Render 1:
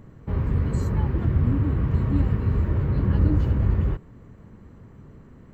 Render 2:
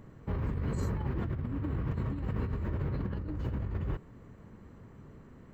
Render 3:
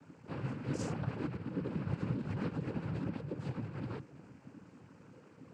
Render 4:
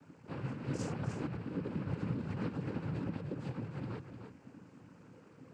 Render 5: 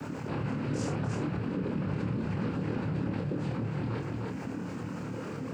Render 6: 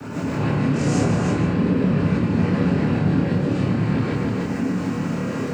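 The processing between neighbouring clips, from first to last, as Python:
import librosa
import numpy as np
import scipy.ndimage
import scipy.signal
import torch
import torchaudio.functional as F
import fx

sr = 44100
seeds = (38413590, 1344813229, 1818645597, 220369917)

y1 = fx.low_shelf(x, sr, hz=260.0, db=-4.5)
y1 = fx.over_compress(y1, sr, threshold_db=-28.0, ratio=-1.0)
y1 = y1 * 10.0 ** (-5.0 / 20.0)
y2 = fx.high_shelf(y1, sr, hz=6200.0, db=11.5)
y2 = fx.chorus_voices(y2, sr, voices=4, hz=1.5, base_ms=19, depth_ms=3.0, mix_pct=60)
y2 = fx.noise_vocoder(y2, sr, seeds[0], bands=8)
y2 = y2 * 10.0 ** (1.0 / 20.0)
y3 = y2 + 10.0 ** (-8.5 / 20.0) * np.pad(y2, (int(303 * sr / 1000.0), 0))[:len(y2)]
y3 = y3 * 10.0 ** (-1.0 / 20.0)
y4 = fx.doubler(y3, sr, ms=27.0, db=-4.0)
y4 = fx.env_flatten(y4, sr, amount_pct=70)
y4 = y4 * 10.0 ** (1.5 / 20.0)
y5 = y4 + 10.0 ** (-10.5 / 20.0) * np.pad(y4, (int(153 * sr / 1000.0), 0))[:len(y4)]
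y5 = fx.rev_gated(y5, sr, seeds[1], gate_ms=180, shape='rising', drr_db=-7.5)
y5 = y5 * 10.0 ** (3.5 / 20.0)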